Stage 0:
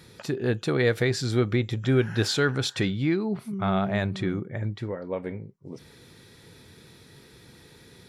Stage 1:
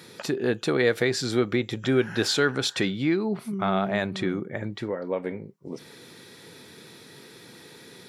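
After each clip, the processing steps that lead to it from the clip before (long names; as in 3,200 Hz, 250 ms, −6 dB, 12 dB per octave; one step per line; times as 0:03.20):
high-pass filter 200 Hz 12 dB per octave
in parallel at −1 dB: downward compressor, threshold −34 dBFS, peak gain reduction 15 dB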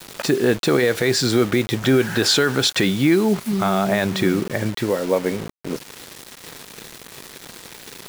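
brickwall limiter −16 dBFS, peak gain reduction 7.5 dB
bit reduction 7 bits
level +9 dB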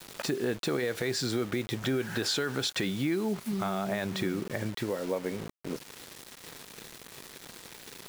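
downward compressor 2 to 1, threshold −22 dBFS, peak gain reduction 6 dB
level −8 dB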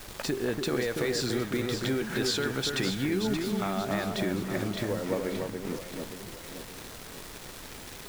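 delay that swaps between a low-pass and a high-pass 288 ms, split 1,800 Hz, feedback 67%, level −4 dB
background noise pink −47 dBFS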